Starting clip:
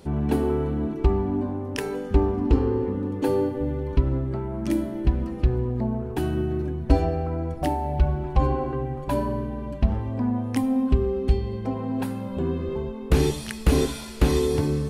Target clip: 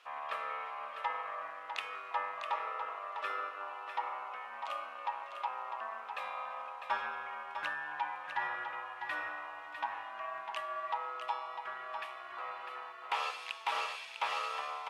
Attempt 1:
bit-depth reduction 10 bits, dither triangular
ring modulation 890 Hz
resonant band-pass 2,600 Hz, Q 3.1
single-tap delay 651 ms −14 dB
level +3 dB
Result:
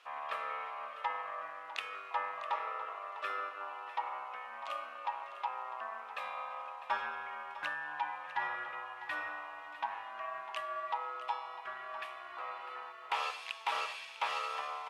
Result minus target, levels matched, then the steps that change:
echo-to-direct −6.5 dB
change: single-tap delay 651 ms −7.5 dB

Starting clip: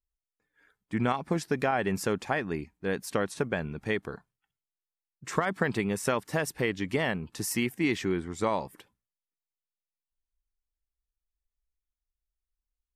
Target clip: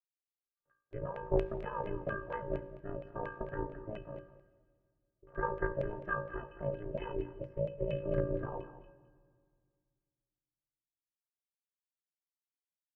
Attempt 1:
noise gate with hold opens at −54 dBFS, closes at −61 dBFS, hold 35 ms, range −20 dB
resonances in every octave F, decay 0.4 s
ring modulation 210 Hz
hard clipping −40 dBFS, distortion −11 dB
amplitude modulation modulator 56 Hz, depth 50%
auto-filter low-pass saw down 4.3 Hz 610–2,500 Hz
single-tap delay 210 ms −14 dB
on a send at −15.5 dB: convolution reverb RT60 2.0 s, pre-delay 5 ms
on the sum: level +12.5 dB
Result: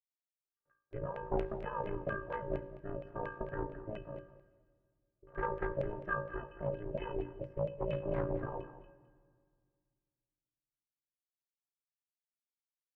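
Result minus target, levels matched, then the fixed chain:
hard clipping: distortion +13 dB
noise gate with hold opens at −54 dBFS, closes at −61 dBFS, hold 35 ms, range −20 dB
resonances in every octave F, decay 0.4 s
ring modulation 210 Hz
hard clipping −32 dBFS, distortion −24 dB
amplitude modulation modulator 56 Hz, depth 50%
auto-filter low-pass saw down 4.3 Hz 610–2,500 Hz
single-tap delay 210 ms −14 dB
on a send at −15.5 dB: convolution reverb RT60 2.0 s, pre-delay 5 ms
on the sum: level +12.5 dB

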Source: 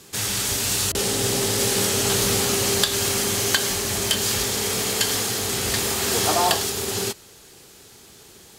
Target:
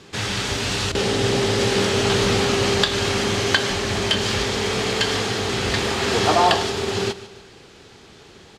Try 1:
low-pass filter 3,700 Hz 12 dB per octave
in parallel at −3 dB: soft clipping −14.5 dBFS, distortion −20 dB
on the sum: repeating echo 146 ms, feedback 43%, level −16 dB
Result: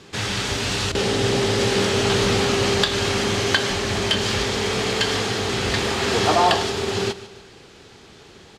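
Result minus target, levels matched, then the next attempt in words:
soft clipping: distortion +17 dB
low-pass filter 3,700 Hz 12 dB per octave
in parallel at −3 dB: soft clipping −3.5 dBFS, distortion −37 dB
on the sum: repeating echo 146 ms, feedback 43%, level −16 dB

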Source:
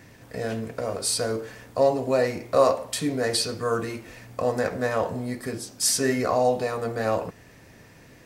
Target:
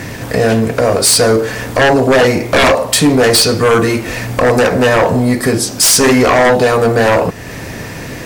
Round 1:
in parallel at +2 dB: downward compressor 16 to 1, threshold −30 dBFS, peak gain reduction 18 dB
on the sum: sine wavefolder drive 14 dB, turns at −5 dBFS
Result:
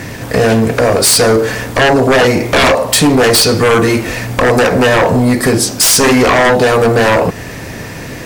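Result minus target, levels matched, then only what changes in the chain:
downward compressor: peak gain reduction −10 dB
change: downward compressor 16 to 1, threshold −40.5 dBFS, peak gain reduction 27.5 dB

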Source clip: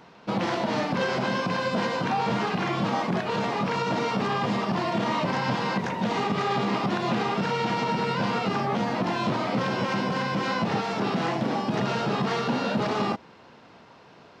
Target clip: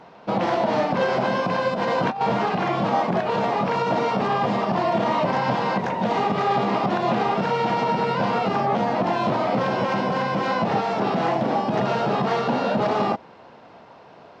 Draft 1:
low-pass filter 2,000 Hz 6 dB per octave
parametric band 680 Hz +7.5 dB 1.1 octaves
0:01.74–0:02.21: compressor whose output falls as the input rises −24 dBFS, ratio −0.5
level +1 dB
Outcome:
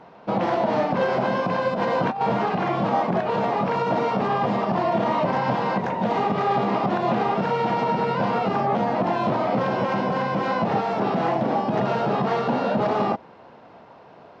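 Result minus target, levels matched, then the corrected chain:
4,000 Hz band −3.5 dB
low-pass filter 4,600 Hz 6 dB per octave
parametric band 680 Hz +7.5 dB 1.1 octaves
0:01.74–0:02.21: compressor whose output falls as the input rises −24 dBFS, ratio −0.5
level +1 dB

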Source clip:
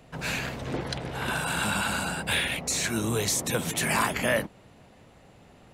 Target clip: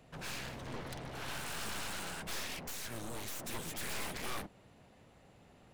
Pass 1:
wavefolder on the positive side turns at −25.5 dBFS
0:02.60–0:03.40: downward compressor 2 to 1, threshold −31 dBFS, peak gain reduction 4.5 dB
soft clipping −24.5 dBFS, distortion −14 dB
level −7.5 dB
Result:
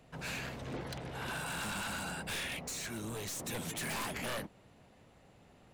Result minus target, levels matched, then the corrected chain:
wavefolder on the positive side: distortion −13 dB
wavefolder on the positive side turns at −35.5 dBFS
0:02.60–0:03.40: downward compressor 2 to 1, threshold −31 dBFS, peak gain reduction 4.5 dB
soft clipping −24.5 dBFS, distortion −12 dB
level −7.5 dB

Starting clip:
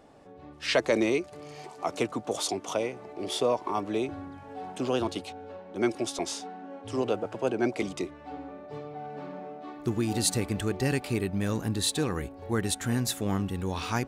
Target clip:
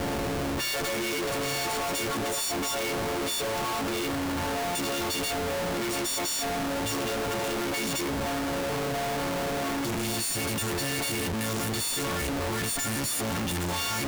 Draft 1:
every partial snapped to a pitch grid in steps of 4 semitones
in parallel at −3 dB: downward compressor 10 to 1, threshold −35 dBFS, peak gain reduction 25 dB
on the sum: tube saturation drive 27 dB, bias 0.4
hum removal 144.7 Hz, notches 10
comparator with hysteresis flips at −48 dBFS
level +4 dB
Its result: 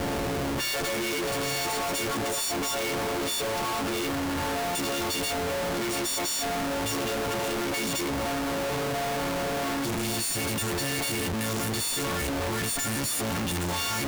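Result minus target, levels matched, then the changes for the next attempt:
downward compressor: peak gain reduction −10.5 dB
change: downward compressor 10 to 1, threshold −46.5 dBFS, peak gain reduction 35.5 dB

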